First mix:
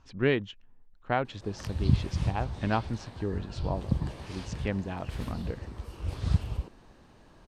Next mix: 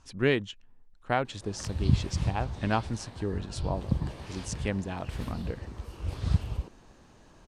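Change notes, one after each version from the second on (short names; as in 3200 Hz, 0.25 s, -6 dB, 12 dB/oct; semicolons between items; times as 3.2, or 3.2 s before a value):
speech: remove air absorption 140 m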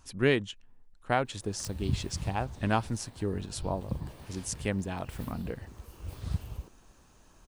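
background -7.0 dB; master: remove LPF 6800 Hz 12 dB/oct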